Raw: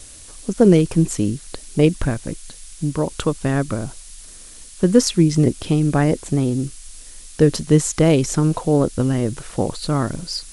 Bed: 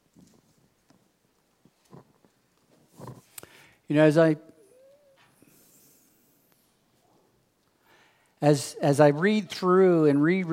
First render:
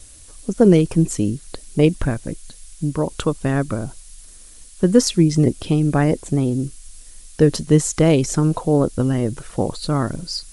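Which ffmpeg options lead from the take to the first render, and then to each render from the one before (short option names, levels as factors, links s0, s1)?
-af "afftdn=nr=6:nf=-41"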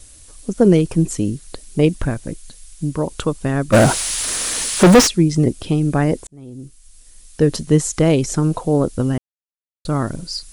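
-filter_complex "[0:a]asplit=3[s0][s1][s2];[s0]afade=t=out:st=3.72:d=0.02[s3];[s1]asplit=2[s4][s5];[s5]highpass=f=720:p=1,volume=100,asoftclip=type=tanh:threshold=0.891[s6];[s4][s6]amix=inputs=2:normalize=0,lowpass=f=2800:p=1,volume=0.501,afade=t=in:st=3.72:d=0.02,afade=t=out:st=5.06:d=0.02[s7];[s2]afade=t=in:st=5.06:d=0.02[s8];[s3][s7][s8]amix=inputs=3:normalize=0,asplit=4[s9][s10][s11][s12];[s9]atrim=end=6.27,asetpts=PTS-STARTPTS,afade=t=out:st=6.266:d=0.004:c=hsin[s13];[s10]atrim=start=6.27:end=9.18,asetpts=PTS-STARTPTS,afade=t=in:d=1.3,afade=t=out:st=2.906:d=0.004:c=hsin[s14];[s11]atrim=start=9.18:end=9.85,asetpts=PTS-STARTPTS,volume=0[s15];[s12]atrim=start=9.85,asetpts=PTS-STARTPTS,afade=t=in:d=0.004:c=hsin[s16];[s13][s14][s15][s16]concat=n=4:v=0:a=1"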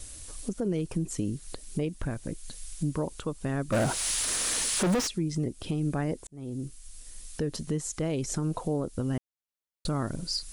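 -af "acompressor=threshold=0.0282:ratio=1.5,alimiter=limit=0.0944:level=0:latency=1:release=400"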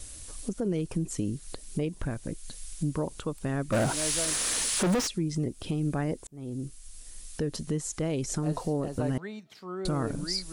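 -filter_complex "[1:a]volume=0.141[s0];[0:a][s0]amix=inputs=2:normalize=0"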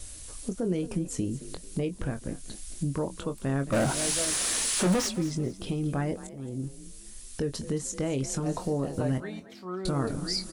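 -filter_complex "[0:a]asplit=2[s0][s1];[s1]adelay=22,volume=0.376[s2];[s0][s2]amix=inputs=2:normalize=0,asplit=4[s3][s4][s5][s6];[s4]adelay=221,afreqshift=37,volume=0.168[s7];[s5]adelay=442,afreqshift=74,volume=0.0519[s8];[s6]adelay=663,afreqshift=111,volume=0.0162[s9];[s3][s7][s8][s9]amix=inputs=4:normalize=0"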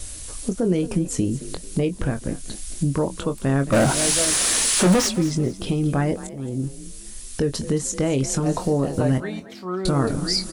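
-af "volume=2.51"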